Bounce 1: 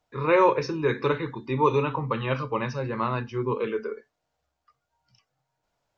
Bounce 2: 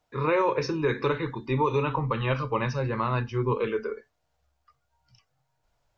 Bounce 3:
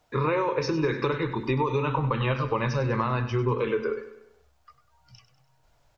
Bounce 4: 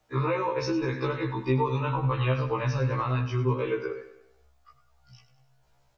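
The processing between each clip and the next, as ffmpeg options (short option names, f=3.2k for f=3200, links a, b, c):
-af "asubboost=boost=3.5:cutoff=110,alimiter=limit=-16.5dB:level=0:latency=1:release=147,volume=1.5dB"
-af "acompressor=threshold=-31dB:ratio=6,aecho=1:1:98|196|294|392|490:0.237|0.116|0.0569|0.0279|0.0137,volume=8dB"
-af "afftfilt=real='re*1.73*eq(mod(b,3),0)':imag='im*1.73*eq(mod(b,3),0)':win_size=2048:overlap=0.75"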